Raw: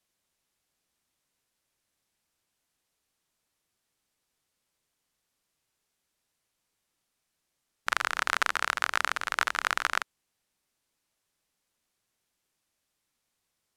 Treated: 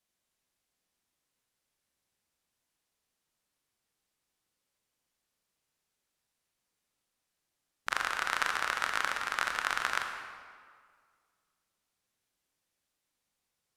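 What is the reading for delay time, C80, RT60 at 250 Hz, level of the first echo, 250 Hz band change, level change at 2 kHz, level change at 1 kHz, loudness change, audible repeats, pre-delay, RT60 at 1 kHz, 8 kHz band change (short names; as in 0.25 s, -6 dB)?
none, 6.0 dB, 1.9 s, none, -2.5 dB, -3.0 dB, -3.0 dB, -3.0 dB, none, 23 ms, 1.9 s, -3.5 dB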